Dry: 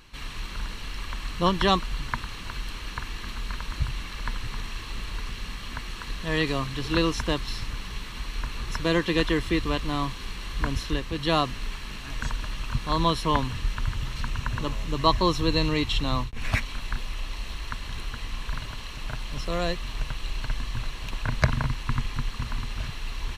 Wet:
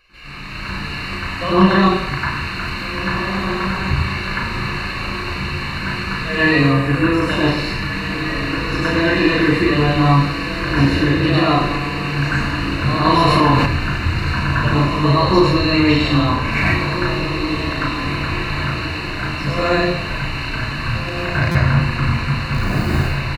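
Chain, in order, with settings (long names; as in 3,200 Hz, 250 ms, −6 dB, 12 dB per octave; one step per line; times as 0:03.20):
0:22.53–0:22.96: each half-wave held at its own peak
Butterworth band-reject 3,300 Hz, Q 4.4
double-tracking delay 36 ms −3 dB
brickwall limiter −16 dBFS, peak gain reduction 10.5 dB
feedback delay with all-pass diffusion 1,765 ms, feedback 41%, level −8 dB
automatic gain control gain up to 7.5 dB
0:06.61–0:07.22: flat-topped bell 4,300 Hz −9 dB 1.3 octaves
convolution reverb RT60 0.85 s, pre-delay 94 ms, DRR −6.5 dB
buffer that repeats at 0:21.51, samples 256, times 6
0:13.05–0:13.66: envelope flattener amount 70%
level −11.5 dB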